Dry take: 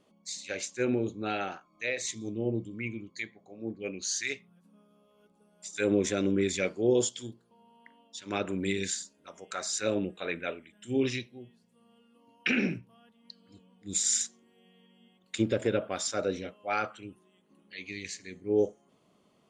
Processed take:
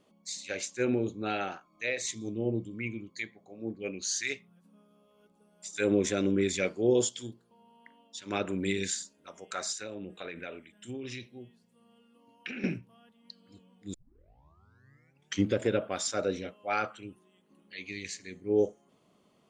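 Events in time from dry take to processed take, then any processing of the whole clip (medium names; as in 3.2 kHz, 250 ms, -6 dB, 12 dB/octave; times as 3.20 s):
9.72–12.64 s: compression 16:1, threshold -35 dBFS
13.94 s: tape start 1.64 s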